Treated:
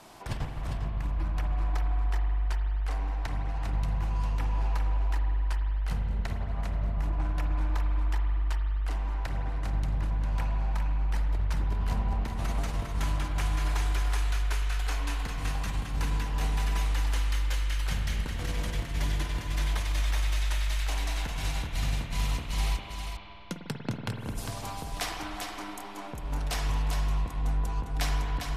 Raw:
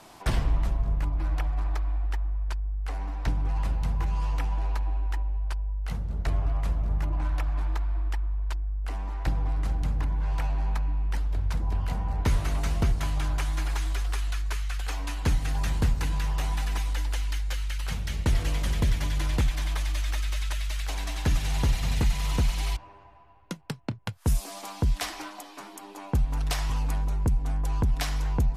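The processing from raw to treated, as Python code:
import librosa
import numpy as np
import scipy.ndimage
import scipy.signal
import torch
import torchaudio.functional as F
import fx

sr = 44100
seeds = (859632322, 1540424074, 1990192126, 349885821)

p1 = fx.over_compress(x, sr, threshold_db=-26.0, ratio=-0.5)
p2 = p1 + fx.echo_single(p1, sr, ms=402, db=-6.0, dry=0)
p3 = fx.rev_spring(p2, sr, rt60_s=3.1, pass_ms=(49,), chirp_ms=40, drr_db=3.5)
y = p3 * 10.0 ** (-2.5 / 20.0)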